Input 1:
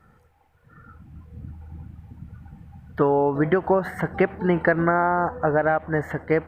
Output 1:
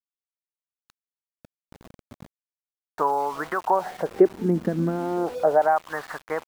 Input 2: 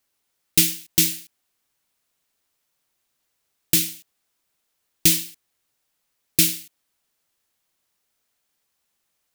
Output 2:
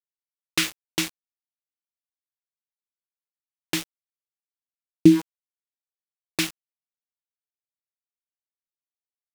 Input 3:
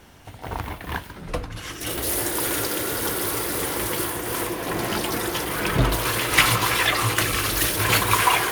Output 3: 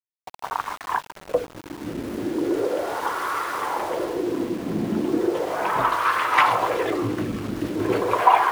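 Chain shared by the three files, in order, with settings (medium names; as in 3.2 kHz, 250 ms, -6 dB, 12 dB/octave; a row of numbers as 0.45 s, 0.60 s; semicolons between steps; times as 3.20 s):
wah-wah 0.37 Hz 220–1200 Hz, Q 3; small samples zeroed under -45 dBFS; normalise loudness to -24 LUFS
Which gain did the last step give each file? +6.5 dB, +17.5 dB, +11.0 dB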